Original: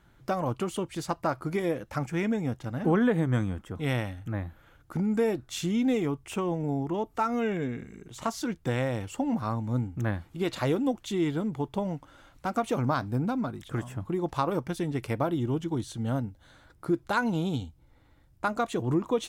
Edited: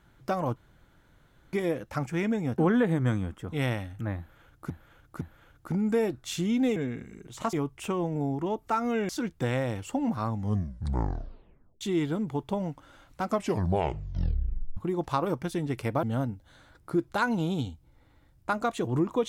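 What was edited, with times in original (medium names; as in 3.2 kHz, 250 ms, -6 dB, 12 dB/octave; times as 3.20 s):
0.56–1.53 s: room tone
2.58–2.85 s: delete
4.46–4.97 s: loop, 3 plays
7.57–8.34 s: move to 6.01 s
9.53 s: tape stop 1.53 s
12.47 s: tape stop 1.55 s
15.28–15.98 s: delete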